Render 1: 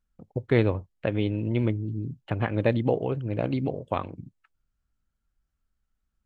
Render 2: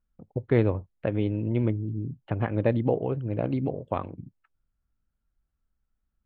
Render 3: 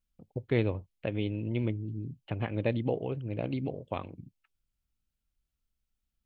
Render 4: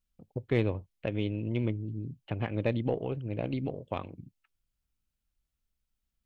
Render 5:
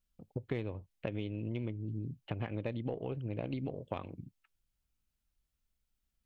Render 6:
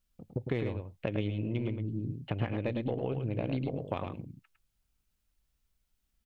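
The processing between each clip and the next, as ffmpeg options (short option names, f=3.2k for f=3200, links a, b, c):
-af "lowpass=f=1.4k:p=1"
-af "highshelf=f=2k:t=q:w=1.5:g=7.5,volume=-5.5dB"
-af "aeval=exprs='0.224*(cos(1*acos(clip(val(0)/0.224,-1,1)))-cos(1*PI/2))+0.00398*(cos(8*acos(clip(val(0)/0.224,-1,1)))-cos(8*PI/2))':c=same"
-af "acompressor=threshold=-33dB:ratio=6"
-af "aecho=1:1:106:0.501,volume=4dB"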